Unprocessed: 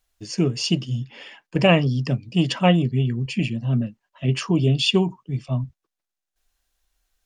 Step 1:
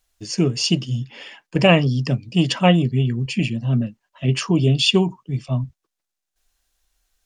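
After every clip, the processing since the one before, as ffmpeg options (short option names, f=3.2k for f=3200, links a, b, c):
-af "equalizer=f=7.3k:w=0.6:g=3,volume=2dB"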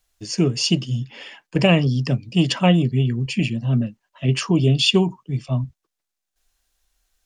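-filter_complex "[0:a]acrossover=split=410|3000[a][b][c];[b]acompressor=threshold=-18dB:ratio=6[d];[a][d][c]amix=inputs=3:normalize=0"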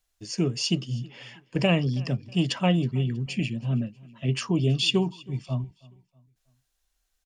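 -af "aecho=1:1:321|642|963:0.0668|0.0261|0.0102,volume=-6.5dB"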